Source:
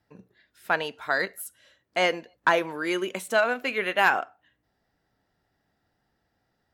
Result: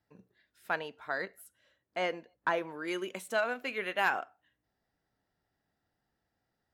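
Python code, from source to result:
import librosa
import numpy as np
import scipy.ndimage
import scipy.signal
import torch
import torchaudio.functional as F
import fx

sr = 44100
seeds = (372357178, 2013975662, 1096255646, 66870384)

y = fx.high_shelf(x, sr, hz=3000.0, db=-8.5, at=(0.79, 2.88))
y = y * librosa.db_to_amplitude(-8.0)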